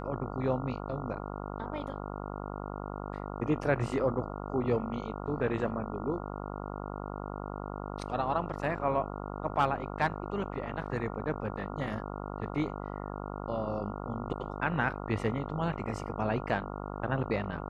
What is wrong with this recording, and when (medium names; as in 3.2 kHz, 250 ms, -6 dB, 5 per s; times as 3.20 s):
buzz 50 Hz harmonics 28 -39 dBFS